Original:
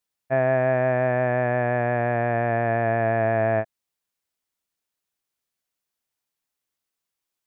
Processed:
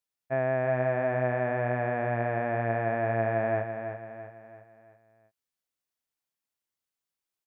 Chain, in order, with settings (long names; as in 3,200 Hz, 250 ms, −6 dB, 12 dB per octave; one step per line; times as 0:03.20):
repeating echo 334 ms, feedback 45%, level −8 dB
level −6.5 dB